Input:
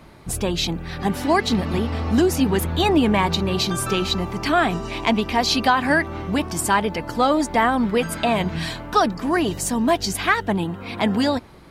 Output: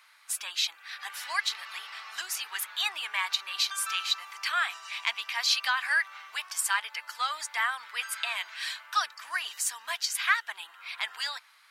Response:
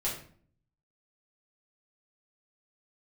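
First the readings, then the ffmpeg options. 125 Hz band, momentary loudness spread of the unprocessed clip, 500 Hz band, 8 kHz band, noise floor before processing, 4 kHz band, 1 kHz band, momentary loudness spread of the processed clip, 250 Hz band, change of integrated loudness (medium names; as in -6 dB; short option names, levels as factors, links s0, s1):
under -40 dB, 6 LU, -31.0 dB, -3.5 dB, -37 dBFS, -3.5 dB, -12.5 dB, 12 LU, under -40 dB, -9.0 dB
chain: -af "highpass=f=1300:w=0.5412,highpass=f=1300:w=1.3066,volume=0.668"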